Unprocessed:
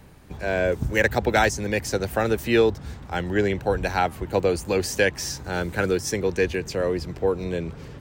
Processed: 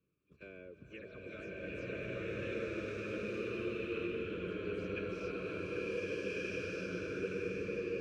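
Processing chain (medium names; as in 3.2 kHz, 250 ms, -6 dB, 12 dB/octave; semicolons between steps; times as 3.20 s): delay that grows with frequency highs early, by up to 101 ms; gate -34 dBFS, range -14 dB; tilt shelf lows +7 dB, about 940 Hz; compression 6:1, threshold -26 dBFS, peak gain reduction 15.5 dB; vowel filter a; vibrato 1.3 Hz 7.2 cents; Butterworth band-stop 770 Hz, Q 0.63; swelling reverb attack 1540 ms, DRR -11.5 dB; trim +3 dB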